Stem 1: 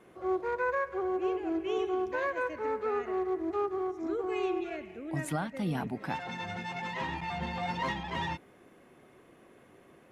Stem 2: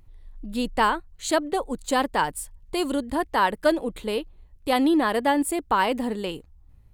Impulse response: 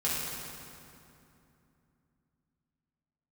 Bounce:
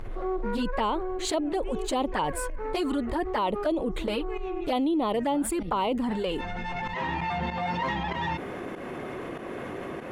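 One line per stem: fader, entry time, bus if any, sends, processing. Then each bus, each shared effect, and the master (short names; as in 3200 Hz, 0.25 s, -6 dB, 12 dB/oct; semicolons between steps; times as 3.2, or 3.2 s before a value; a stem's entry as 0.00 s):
-6.0 dB, 0.00 s, no send, pump 96 bpm, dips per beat 1, -16 dB, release 0.205 s; auto duck -12 dB, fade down 1.20 s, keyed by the second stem
-5.5 dB, 0.00 s, no send, envelope flanger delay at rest 10.8 ms, full sweep at -19 dBFS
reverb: off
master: LPF 2600 Hz 6 dB/oct; bell 130 Hz -2.5 dB 2.2 oct; fast leveller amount 70%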